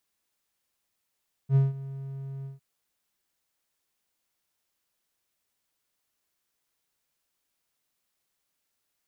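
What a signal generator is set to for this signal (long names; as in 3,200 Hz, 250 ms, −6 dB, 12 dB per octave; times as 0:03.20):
note with an ADSR envelope triangle 136 Hz, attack 66 ms, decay 172 ms, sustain −18.5 dB, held 0.96 s, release 145 ms −14 dBFS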